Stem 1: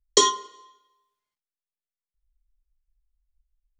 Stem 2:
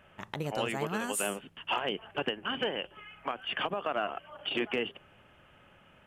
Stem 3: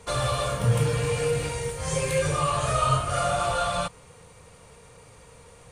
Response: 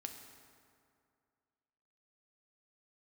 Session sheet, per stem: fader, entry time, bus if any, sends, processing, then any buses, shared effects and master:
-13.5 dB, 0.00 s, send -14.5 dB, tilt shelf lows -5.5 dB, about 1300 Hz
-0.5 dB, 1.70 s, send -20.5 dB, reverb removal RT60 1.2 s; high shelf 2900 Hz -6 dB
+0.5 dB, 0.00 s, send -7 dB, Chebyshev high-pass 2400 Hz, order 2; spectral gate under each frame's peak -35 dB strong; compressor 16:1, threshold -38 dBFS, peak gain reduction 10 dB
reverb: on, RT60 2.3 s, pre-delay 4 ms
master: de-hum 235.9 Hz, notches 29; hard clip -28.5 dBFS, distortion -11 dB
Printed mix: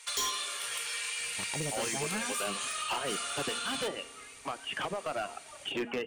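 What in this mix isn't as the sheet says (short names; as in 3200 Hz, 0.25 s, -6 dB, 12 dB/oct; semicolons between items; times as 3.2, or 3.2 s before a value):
stem 2: entry 1.70 s -> 1.20 s; reverb return +10.0 dB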